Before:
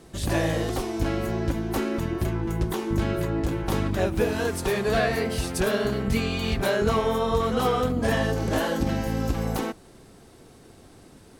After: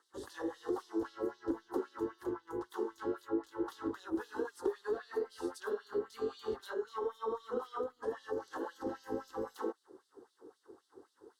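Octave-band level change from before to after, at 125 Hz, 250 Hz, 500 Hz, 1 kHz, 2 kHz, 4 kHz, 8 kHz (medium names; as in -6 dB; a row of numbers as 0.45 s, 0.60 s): -33.5 dB, -13.5 dB, -11.0 dB, -14.0 dB, -18.5 dB, -21.5 dB, -22.0 dB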